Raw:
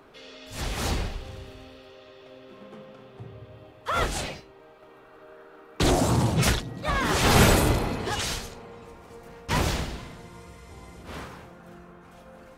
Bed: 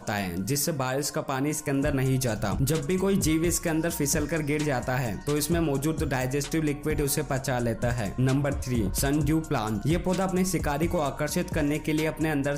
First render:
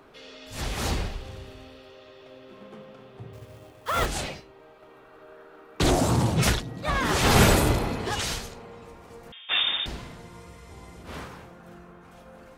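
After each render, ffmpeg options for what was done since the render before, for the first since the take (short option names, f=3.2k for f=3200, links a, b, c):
-filter_complex "[0:a]asettb=1/sr,asplit=3[a][b][c];[a]atrim=end=3.334[d];[b]atrim=start=3.33:end=4.06,asetpts=PTS-STARTPTS,afade=t=in:d=0.004:c=qsin,afade=t=out:st=0.726:d=0.004:c=qsin,acrusher=bits=3:mode=log:mix=0:aa=0.000001[e];[c]atrim=start=4.056[f];[d][e]acrossfade=d=0.004:c1=hsin:c2=qsin[g];[g][f]acrossfade=d=0.004:c1=qsin:c2=hsin,asettb=1/sr,asplit=3[h][i][j];[h]atrim=end=9.324[k];[i]atrim=start=9.32:end=9.86,asetpts=PTS-STARTPTS,afade=t=in:d=0.004:c=qsin,afade=t=out:st=0.536:d=0.004:c=qsin,lowpass=f=3.1k:t=q:w=0.5098,lowpass=f=3.1k:t=q:w=0.6013,lowpass=f=3.1k:t=q:w=0.9,lowpass=f=3.1k:t=q:w=2.563,afreqshift=-3700[l];[j]atrim=start=9.856[m];[k][l]acrossfade=d=0.004:c1=hsin:c2=qsin[n];[n][m]acrossfade=d=0.004:c1=qsin:c2=hsin"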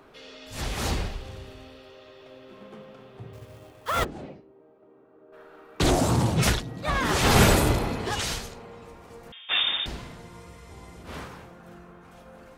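-filter_complex "[0:a]asplit=3[a][b][c];[a]afade=t=out:st=4.03:d=0.02[d];[b]bandpass=f=280:t=q:w=1.1,afade=t=in:st=4.03:d=0.02,afade=t=out:st=5.32:d=0.02[e];[c]afade=t=in:st=5.32:d=0.02[f];[d][e][f]amix=inputs=3:normalize=0"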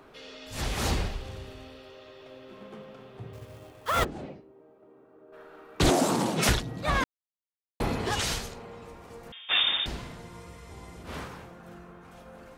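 -filter_complex "[0:a]asettb=1/sr,asplit=3[a][b][c];[a]atrim=end=5.904[d];[b]atrim=start=5.9:end=6.49,asetpts=PTS-STARTPTS,afade=t=in:d=0.004:c=qsin,afade=t=out:st=0.586:d=0.004:c=qsin,highpass=f=190:w=0.5412,highpass=f=190:w=1.3066[e];[c]atrim=start=6.486[f];[d][e]acrossfade=d=0.004:c1=hsin:c2=qsin[g];[g][f]acrossfade=d=0.004:c1=qsin:c2=hsin,asplit=3[h][i][j];[h]atrim=end=7.04,asetpts=PTS-STARTPTS,afade=t=out:st=7.036:d=0.004:c=hsin[k];[i]atrim=start=7.04:end=7.8,asetpts=PTS-STARTPTS,volume=0[l];[j]atrim=start=7.8,asetpts=PTS-STARTPTS,afade=t=in:d=0.004:c=hsin[m];[k][l][m]concat=n=3:v=0:a=1"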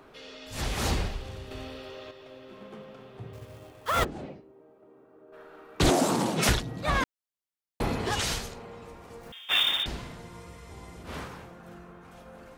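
-filter_complex "[0:a]asplit=3[a][b][c];[a]afade=t=out:st=9.2:d=0.02[d];[b]acrusher=bits=4:mode=log:mix=0:aa=0.000001,afade=t=in:st=9.2:d=0.02,afade=t=out:st=9.82:d=0.02[e];[c]afade=t=in:st=9.82:d=0.02[f];[d][e][f]amix=inputs=3:normalize=0,asplit=3[g][h][i];[g]atrim=end=1.512[j];[h]atrim=start=1.508:end=2.112,asetpts=PTS-STARTPTS,volume=6dB[k];[i]atrim=start=2.108[l];[j][k]acrossfade=d=0.004:c1=hsin:c2=hsin[m];[m][l]acrossfade=d=0.004:c1=hsin:c2=hsin"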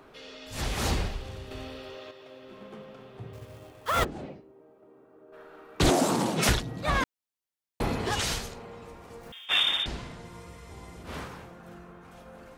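-filter_complex "[0:a]asettb=1/sr,asplit=3[a][b][c];[a]atrim=end=1.974[d];[b]atrim=start=1.97:end=2.43,asetpts=PTS-STARTPTS,afade=t=in:d=0.004:c=qsin,afade=t=out:st=0.456:d=0.004:c=qsin,highpass=f=160:p=1[e];[c]atrim=start=2.426[f];[d][e]acrossfade=d=0.004:c1=hsin:c2=qsin[g];[g][f]acrossfade=d=0.004:c1=qsin:c2=hsin,asettb=1/sr,asplit=3[h][i][j];[h]atrim=end=9.464[k];[i]atrim=start=9.46:end=10.25,asetpts=PTS-STARTPTS,afade=t=in:d=0.004:c=qsin,afade=t=out:st=0.786:d=0.004:c=qsin,lowpass=9.3k[l];[j]atrim=start=10.246[m];[k][l]acrossfade=d=0.004:c1=hsin:c2=qsin[n];[n][m]acrossfade=d=0.004:c1=qsin:c2=hsin"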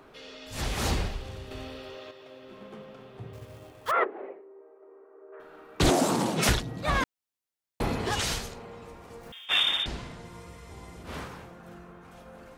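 -filter_complex "[0:a]asettb=1/sr,asplit=3[a][b][c];[a]atrim=end=3.914[d];[b]atrim=start=3.91:end=5.4,asetpts=PTS-STARTPTS,afade=t=in:d=0.004:c=qsin,afade=t=out:st=1.486:d=0.004:c=qsin,highpass=f=380:w=0.5412,highpass=f=380:w=1.3066,equalizer=f=400:t=q:w=4:g=9,equalizer=f=1.1k:t=q:w=4:g=4,equalizer=f=2k:t=q:w=4:g=4,lowpass=f=2.1k:w=0.5412,lowpass=f=2.1k:w=1.3066[e];[c]atrim=start=5.396[f];[d][e]acrossfade=d=0.004:c1=hsin:c2=qsin[g];[g][f]acrossfade=d=0.004:c1=qsin:c2=hsin"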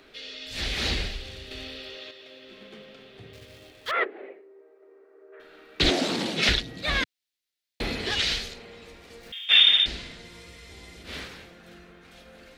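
-filter_complex "[0:a]acrossover=split=5100[a][b];[b]acompressor=threshold=-49dB:ratio=4:attack=1:release=60[c];[a][c]amix=inputs=2:normalize=0,equalizer=f=125:t=o:w=1:g=-8,equalizer=f=1k:t=o:w=1:g=-10,equalizer=f=2k:t=o:w=1:g=6,equalizer=f=4k:t=o:w=1:g=10"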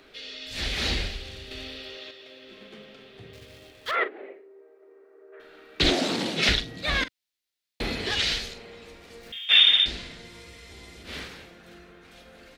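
-filter_complex "[0:a]asplit=2[a][b];[b]adelay=43,volume=-13.5dB[c];[a][c]amix=inputs=2:normalize=0"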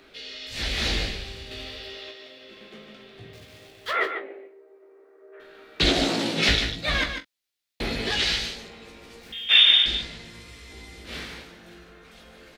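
-filter_complex "[0:a]asplit=2[a][b];[b]adelay=18,volume=-5.5dB[c];[a][c]amix=inputs=2:normalize=0,asplit=2[d][e];[e]aecho=0:1:147:0.398[f];[d][f]amix=inputs=2:normalize=0"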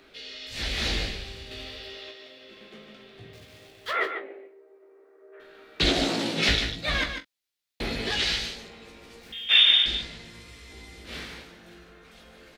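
-af "volume=-2dB"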